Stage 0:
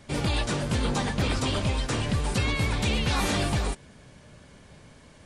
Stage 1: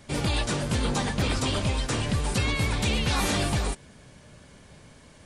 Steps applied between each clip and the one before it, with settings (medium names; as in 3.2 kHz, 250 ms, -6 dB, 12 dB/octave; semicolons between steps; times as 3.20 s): treble shelf 6.4 kHz +4.5 dB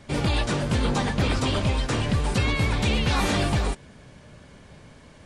low-pass 3.9 kHz 6 dB/octave; trim +3 dB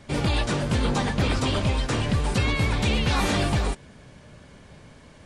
no audible change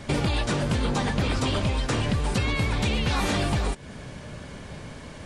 compression 4:1, threshold -32 dBFS, peak gain reduction 11.5 dB; trim +8.5 dB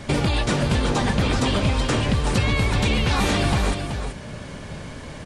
delay 378 ms -7 dB; trim +3.5 dB